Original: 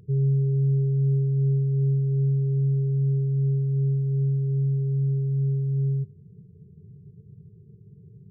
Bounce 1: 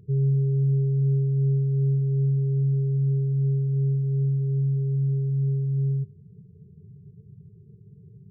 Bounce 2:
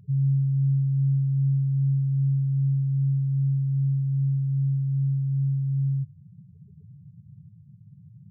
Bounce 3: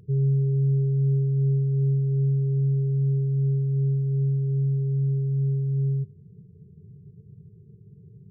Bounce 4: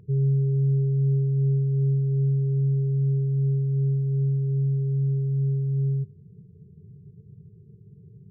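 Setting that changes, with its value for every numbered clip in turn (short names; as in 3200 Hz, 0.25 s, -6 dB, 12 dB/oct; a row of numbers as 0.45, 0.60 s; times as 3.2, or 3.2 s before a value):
spectral gate, under each frame's peak: -25, -10, -60, -40 dB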